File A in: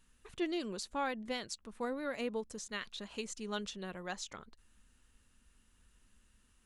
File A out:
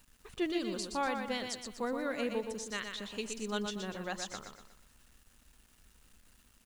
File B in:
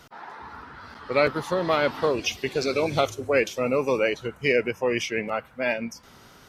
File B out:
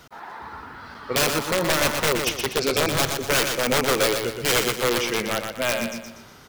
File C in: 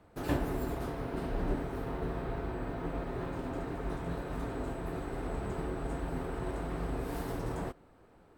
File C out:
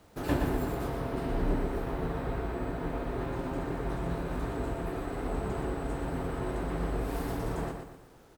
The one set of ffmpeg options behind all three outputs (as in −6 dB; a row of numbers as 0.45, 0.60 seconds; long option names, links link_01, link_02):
-af "aeval=exprs='(mod(6.68*val(0)+1,2)-1)/6.68':channel_layout=same,aecho=1:1:121|242|363|484|605:0.501|0.205|0.0842|0.0345|0.0142,acrusher=bits=10:mix=0:aa=0.000001,volume=2dB"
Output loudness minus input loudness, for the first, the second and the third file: +3.0, +3.0, +3.0 LU